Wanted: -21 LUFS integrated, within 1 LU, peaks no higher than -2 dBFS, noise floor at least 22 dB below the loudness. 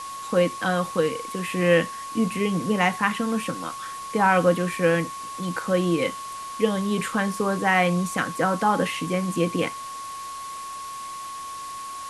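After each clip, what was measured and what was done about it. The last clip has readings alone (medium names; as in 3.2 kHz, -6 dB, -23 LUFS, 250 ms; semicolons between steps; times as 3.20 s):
steady tone 1.1 kHz; tone level -33 dBFS; noise floor -35 dBFS; noise floor target -47 dBFS; loudness -24.5 LUFS; peak level -6.5 dBFS; loudness target -21.0 LUFS
-> band-stop 1.1 kHz, Q 30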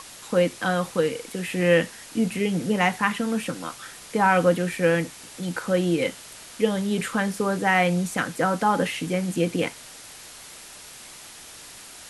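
steady tone not found; noise floor -44 dBFS; noise floor target -46 dBFS
-> noise reduction 6 dB, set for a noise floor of -44 dBFS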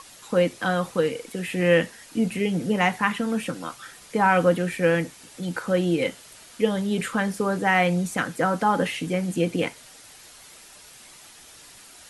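noise floor -48 dBFS; loudness -24.0 LUFS; peak level -6.5 dBFS; loudness target -21.0 LUFS
-> trim +3 dB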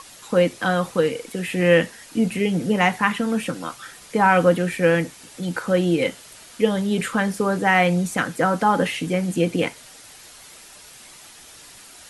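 loudness -21.0 LUFS; peak level -3.5 dBFS; noise floor -45 dBFS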